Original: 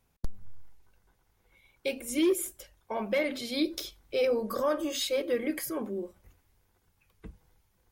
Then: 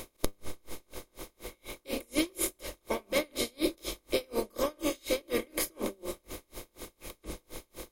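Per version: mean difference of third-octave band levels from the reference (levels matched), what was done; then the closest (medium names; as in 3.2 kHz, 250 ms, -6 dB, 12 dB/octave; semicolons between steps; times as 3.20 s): 12.0 dB: spectral levelling over time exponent 0.4; treble shelf 5.7 kHz +7 dB; logarithmic tremolo 4.1 Hz, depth 35 dB; trim -2.5 dB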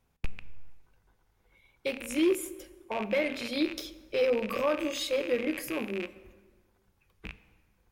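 4.5 dB: rattle on loud lows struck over -49 dBFS, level -25 dBFS; treble shelf 5.1 kHz -6 dB; plate-style reverb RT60 1.6 s, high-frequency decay 0.65×, DRR 13.5 dB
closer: second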